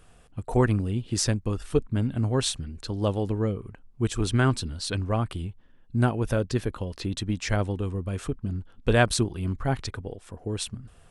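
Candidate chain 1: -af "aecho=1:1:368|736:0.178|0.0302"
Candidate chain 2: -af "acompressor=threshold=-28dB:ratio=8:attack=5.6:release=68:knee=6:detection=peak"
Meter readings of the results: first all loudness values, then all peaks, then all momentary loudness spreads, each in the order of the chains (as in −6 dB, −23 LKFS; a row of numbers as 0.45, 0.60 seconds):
−27.5, −34.0 LKFS; −6.5, −14.5 dBFS; 12, 7 LU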